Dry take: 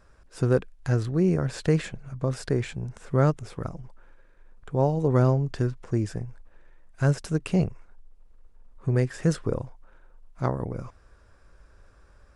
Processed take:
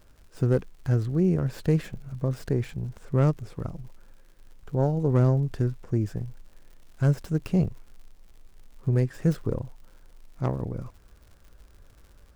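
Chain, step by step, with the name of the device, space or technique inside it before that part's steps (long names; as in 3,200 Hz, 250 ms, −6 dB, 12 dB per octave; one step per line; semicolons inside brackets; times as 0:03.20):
record under a worn stylus (stylus tracing distortion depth 0.14 ms; surface crackle 110 per second −39 dBFS; pink noise bed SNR 37 dB)
low-shelf EQ 450 Hz +8 dB
level −6.5 dB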